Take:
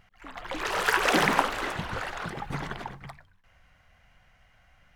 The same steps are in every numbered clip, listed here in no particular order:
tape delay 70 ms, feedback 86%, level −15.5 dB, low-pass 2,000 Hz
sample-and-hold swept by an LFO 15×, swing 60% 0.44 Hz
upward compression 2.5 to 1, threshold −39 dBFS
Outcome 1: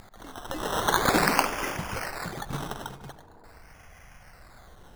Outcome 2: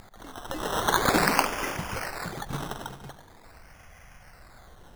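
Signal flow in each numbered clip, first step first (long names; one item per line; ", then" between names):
sample-and-hold swept by an LFO, then tape delay, then upward compression
tape delay, then sample-and-hold swept by an LFO, then upward compression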